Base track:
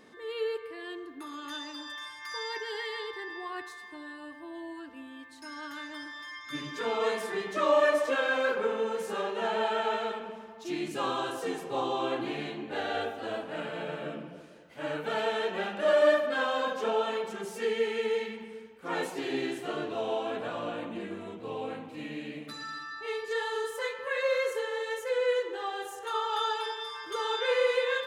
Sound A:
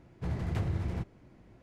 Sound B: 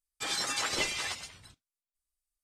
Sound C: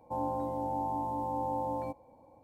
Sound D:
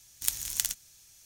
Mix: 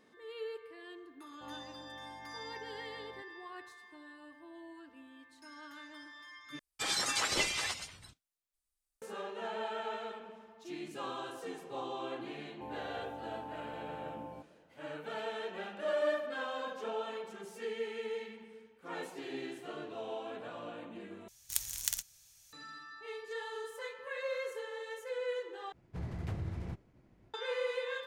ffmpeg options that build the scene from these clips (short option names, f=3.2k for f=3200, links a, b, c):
-filter_complex "[3:a]asplit=2[a][b];[0:a]volume=-9.5dB[c];[a]aeval=exprs='val(0)+0.002*sin(2*PI*1700*n/s)':c=same[d];[4:a]equalizer=f=280:w=1.5:g=-8.5[e];[1:a]agate=range=-33dB:threshold=-56dB:ratio=3:release=100:detection=peak[f];[c]asplit=4[g][h][i][j];[g]atrim=end=6.594[k];[2:a]atrim=end=2.43,asetpts=PTS-STARTPTS,volume=-0.5dB[l];[h]atrim=start=9.016:end=21.284[m];[e]atrim=end=1.25,asetpts=PTS-STARTPTS,volume=-5dB[n];[i]atrim=start=22.526:end=25.724[o];[f]atrim=end=1.62,asetpts=PTS-STARTPTS,volume=-6.5dB[p];[j]atrim=start=27.336[q];[d]atrim=end=2.43,asetpts=PTS-STARTPTS,volume=-17dB,afade=t=in:d=0.004:c=hsin,afade=t=out:st=2.426:d=0.004:c=hsin,adelay=1300[r];[b]atrim=end=2.43,asetpts=PTS-STARTPTS,volume=-12dB,afade=t=in:d=0.004:c=hsin,afade=t=out:st=2.426:d=0.004:c=hsin,adelay=12500[s];[k][l]acrossfade=d=0.004:c1=hsin:c2=hsin[t];[t][m]acrossfade=d=0.004:c1=hsin:c2=hsin[u];[u][n]acrossfade=d=0.004:c1=hsin:c2=hsin[v];[v][o]acrossfade=d=0.004:c1=hsin:c2=hsin[w];[w][p]acrossfade=d=0.004:c1=hsin:c2=hsin[x];[x][q]acrossfade=d=0.004:c1=hsin:c2=hsin[y];[y][r][s]amix=inputs=3:normalize=0"